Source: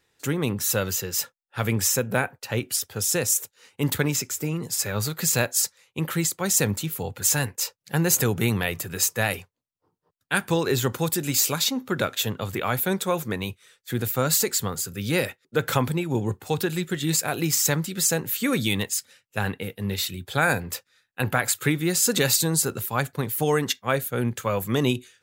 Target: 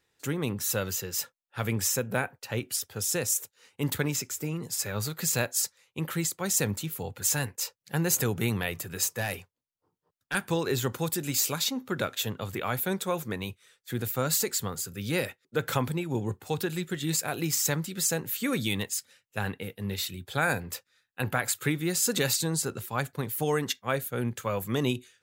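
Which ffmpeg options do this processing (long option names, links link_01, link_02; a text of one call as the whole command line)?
ffmpeg -i in.wav -filter_complex "[0:a]asettb=1/sr,asplit=3[link_01][link_02][link_03];[link_01]atrim=end=9.044[link_04];[link_02]atrim=start=9.04:end=10.35,asetpts=PTS-STARTPTS,afade=type=in:duration=0.004:curve=qsin,afade=type=out:start_time=1.306:duration=0.004:curve=qsin,asoftclip=type=hard:threshold=-18dB[link_05];[link_03]atrim=start=10.346[link_06];[link_04][link_05]acrossfade=duration=0.004:curve1=hsin:curve2=qsin[link_07];[link_07][link_06]acrossfade=duration=0.004:curve1=qsin:curve2=hsin,asettb=1/sr,asplit=3[link_08][link_09][link_10];[link_08]atrim=end=22.334[link_11];[link_09]atrim=start=22.33:end=22.98,asetpts=PTS-STARTPTS,afade=type=in:duration=0.004:curve=qsin,afade=type=out:start_time=0.646:duration=0.004:curve=qsin,equalizer=frequency=14000:width_type=o:width=0.77:gain=-7[link_12];[link_10]atrim=start=22.976[link_13];[link_11][link_12]acrossfade=duration=0.004:curve1=hsin:curve2=qsin[link_14];[link_14][link_13]acrossfade=duration=0.004:curve1=qsin:curve2=hsin,volume=-5dB" out.wav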